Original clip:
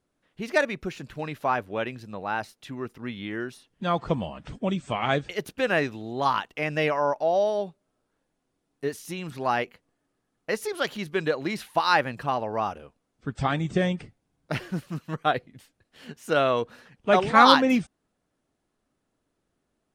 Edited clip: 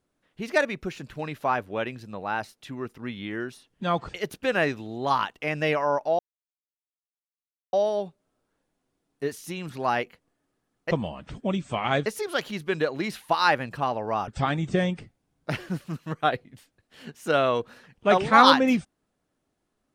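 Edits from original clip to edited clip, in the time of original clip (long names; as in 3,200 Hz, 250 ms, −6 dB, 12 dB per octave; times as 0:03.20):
0:04.09–0:05.24: move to 0:10.52
0:07.34: splice in silence 1.54 s
0:12.74–0:13.30: remove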